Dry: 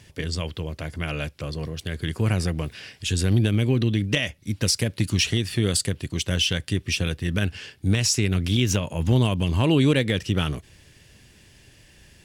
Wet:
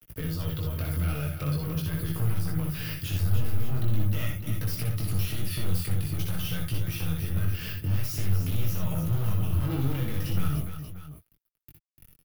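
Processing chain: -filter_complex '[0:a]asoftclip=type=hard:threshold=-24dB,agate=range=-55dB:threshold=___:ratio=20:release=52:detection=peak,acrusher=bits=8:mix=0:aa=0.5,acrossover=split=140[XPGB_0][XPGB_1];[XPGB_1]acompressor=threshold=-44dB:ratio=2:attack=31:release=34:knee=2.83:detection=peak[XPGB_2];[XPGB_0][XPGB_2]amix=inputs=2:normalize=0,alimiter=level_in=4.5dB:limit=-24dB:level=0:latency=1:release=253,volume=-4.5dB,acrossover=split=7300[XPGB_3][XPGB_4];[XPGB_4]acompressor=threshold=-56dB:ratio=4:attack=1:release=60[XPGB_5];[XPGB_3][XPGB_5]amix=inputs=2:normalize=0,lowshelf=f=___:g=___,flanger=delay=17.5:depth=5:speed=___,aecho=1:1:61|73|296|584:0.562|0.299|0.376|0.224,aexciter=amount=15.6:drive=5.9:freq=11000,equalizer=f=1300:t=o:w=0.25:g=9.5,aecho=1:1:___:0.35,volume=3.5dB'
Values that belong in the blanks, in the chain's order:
-50dB, 130, 11.5, 0.45, 6.4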